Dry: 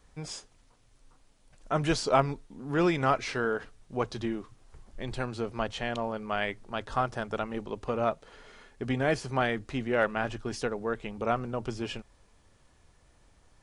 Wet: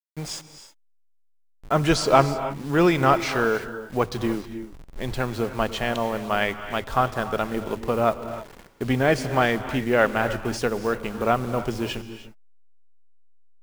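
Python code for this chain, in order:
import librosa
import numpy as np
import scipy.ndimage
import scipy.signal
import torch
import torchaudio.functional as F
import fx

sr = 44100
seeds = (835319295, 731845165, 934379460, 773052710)

y = fx.delta_hold(x, sr, step_db=-45.0)
y = fx.rev_gated(y, sr, seeds[0], gate_ms=340, shape='rising', drr_db=11.0)
y = y * 10.0 ** (7.0 / 20.0)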